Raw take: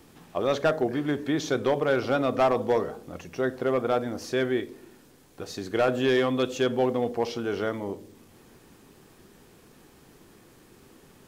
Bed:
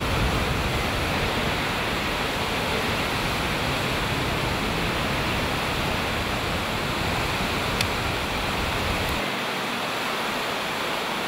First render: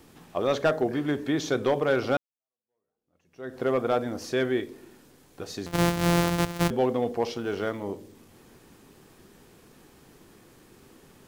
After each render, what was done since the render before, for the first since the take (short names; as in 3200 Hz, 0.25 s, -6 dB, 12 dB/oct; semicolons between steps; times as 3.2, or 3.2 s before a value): 2.17–3.61 fade in exponential; 5.66–6.71 sample sorter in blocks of 256 samples; 7.33–7.84 G.711 law mismatch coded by A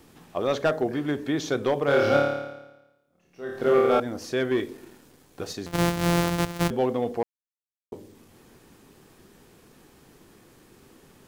1.85–4 flutter echo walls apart 4.8 m, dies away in 1 s; 4.51–5.53 sample leveller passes 1; 7.23–7.92 mute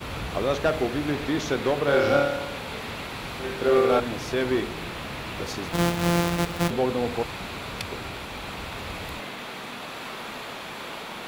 add bed -9.5 dB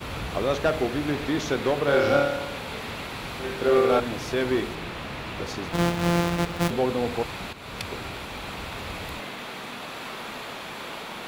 4.75–6.62 high shelf 6300 Hz -6 dB; 7.53–7.93 fade in equal-power, from -12 dB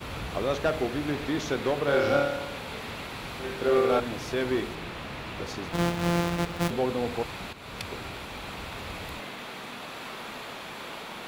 gain -3 dB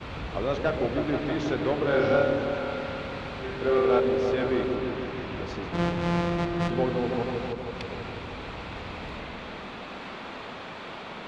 air absorption 130 m; repeats that get brighter 0.16 s, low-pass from 400 Hz, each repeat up 1 oct, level -3 dB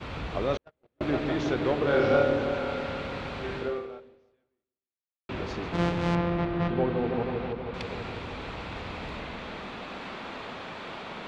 0.57–1.01 gate -20 dBFS, range -51 dB; 3.58–5.29 fade out exponential; 6.15–7.74 air absorption 250 m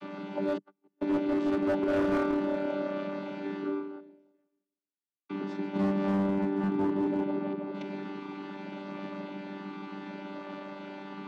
chord vocoder bare fifth, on G3; hard clip -23 dBFS, distortion -14 dB